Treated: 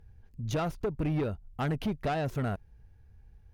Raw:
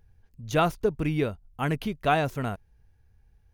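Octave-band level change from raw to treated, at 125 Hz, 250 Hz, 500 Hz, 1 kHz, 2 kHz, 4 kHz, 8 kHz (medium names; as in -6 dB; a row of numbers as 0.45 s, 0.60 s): -1.5 dB, -3.0 dB, -6.0 dB, -8.5 dB, -9.0 dB, -7.0 dB, -5.0 dB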